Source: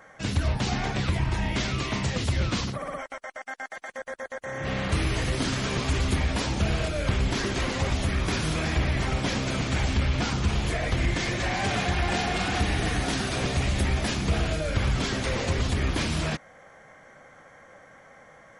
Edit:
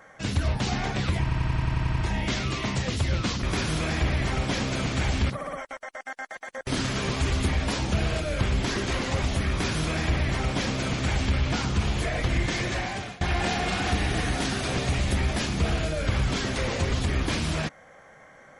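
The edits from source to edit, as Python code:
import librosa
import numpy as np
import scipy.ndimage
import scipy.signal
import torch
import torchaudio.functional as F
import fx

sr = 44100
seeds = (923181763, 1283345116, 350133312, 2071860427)

y = fx.edit(x, sr, fx.stutter(start_s=1.22, slice_s=0.09, count=9),
    fx.cut(start_s=4.08, length_s=1.27),
    fx.duplicate(start_s=8.18, length_s=1.87, to_s=2.71),
    fx.fade_out_to(start_s=11.38, length_s=0.51, floor_db=-23.5), tone=tone)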